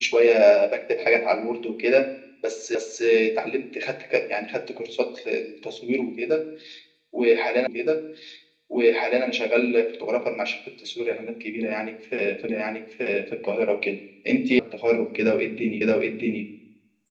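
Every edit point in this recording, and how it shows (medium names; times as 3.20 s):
2.75 s: repeat of the last 0.3 s
7.67 s: repeat of the last 1.57 s
12.49 s: repeat of the last 0.88 s
14.59 s: sound stops dead
15.81 s: repeat of the last 0.62 s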